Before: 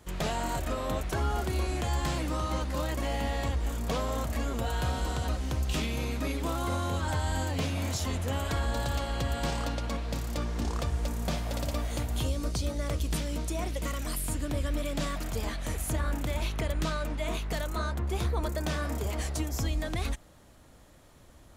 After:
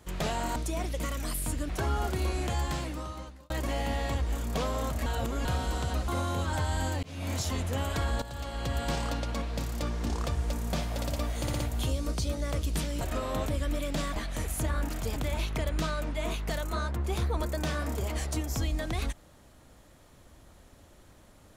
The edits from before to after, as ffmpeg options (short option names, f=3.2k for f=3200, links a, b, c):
-filter_complex "[0:a]asplit=17[a][b][c][d][e][f][g][h][i][j][k][l][m][n][o][p][q];[a]atrim=end=0.562[r];[b]atrim=start=13.378:end=14.512[s];[c]atrim=start=1.028:end=2.84,asetpts=PTS-STARTPTS,afade=t=out:st=0.832:d=0.98[t];[d]atrim=start=2.84:end=4.402,asetpts=PTS-STARTPTS,afade=t=in:d=0.004:c=hsin[u];[e]atrim=start=4.398:end=4.792,asetpts=PTS-STARTPTS,areverse[v];[f]atrim=start=4.788:end=5.422[w];[g]atrim=start=6.628:end=7.58,asetpts=PTS-STARTPTS,afade=t=out:st=0.948:d=0.004:c=hsin[x];[h]atrim=start=7.58:end=8.77,asetpts=PTS-STARTPTS,afade=t=in:d=0.3,afade=t=out:st=1.186:d=0.004:c=hsin:silence=0.211349[y];[i]atrim=start=8.77:end=12.022,asetpts=PTS-STARTPTS,afade=t=in:d=0.56:silence=0.211349[z];[j]atrim=start=11.958:end=12.022[aa];[k]atrim=start=11.958:end=12.022[ab];[l]atrim=start=11.958:end=13.382[ac];[m]atrim=start=0.558:end=1.032[ad];[n]atrim=start=14.508:end=15.192[ae];[o]atrim=start=15.458:end=16.192[af];[p]atrim=start=15.188:end=15.462[ag];[q]atrim=start=16.188[ah];[r][s]acrossfade=d=0.004:c1=hsin:c2=hsin[ai];[t][u]concat=n=2:v=0:a=1[aj];[ai][aj]acrossfade=d=0.004:c1=hsin:c2=hsin[ak];[ak][v]acrossfade=d=0.004:c1=hsin:c2=hsin[al];[al][w]acrossfade=d=0.004:c1=hsin:c2=hsin[am];[x][y][z]concat=n=3:v=0:a=1[an];[am][an]acrossfade=d=0.004:c1=hsin:c2=hsin[ao];[ao][aa]acrossfade=d=0.004:c1=hsin:c2=hsin[ap];[ap][ab]acrossfade=d=0.004:c1=hsin:c2=hsin[aq];[aq][ac]acrossfade=d=0.004:c1=hsin:c2=hsin[ar];[ar][ad]acrossfade=d=0.004:c1=hsin:c2=hsin[as];[as][ae]acrossfade=d=0.004:c1=hsin:c2=hsin[at];[at][af]acrossfade=d=0.004:c1=hsin:c2=hsin[au];[au][ag]acrossfade=d=0.004:c1=hsin:c2=hsin[av];[av][ah]acrossfade=d=0.004:c1=hsin:c2=hsin"